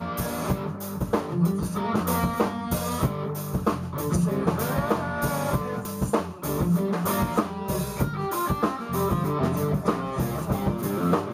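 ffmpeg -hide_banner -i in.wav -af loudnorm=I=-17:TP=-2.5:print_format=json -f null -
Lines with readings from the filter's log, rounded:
"input_i" : "-26.4",
"input_tp" : "-9.0",
"input_lra" : "0.7",
"input_thresh" : "-36.4",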